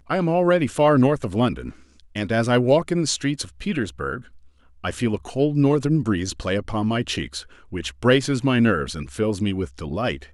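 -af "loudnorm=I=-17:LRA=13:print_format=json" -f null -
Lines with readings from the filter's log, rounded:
"input_i" : "-22.2",
"input_tp" : "-5.6",
"input_lra" : "3.2",
"input_thresh" : "-32.6",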